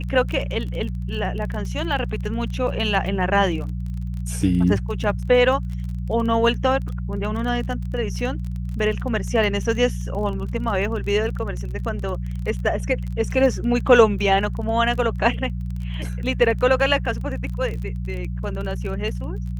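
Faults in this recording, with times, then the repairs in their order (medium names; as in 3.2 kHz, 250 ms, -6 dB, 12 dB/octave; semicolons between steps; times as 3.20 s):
crackle 27 per s -29 dBFS
hum 60 Hz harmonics 3 -27 dBFS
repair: de-click; de-hum 60 Hz, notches 3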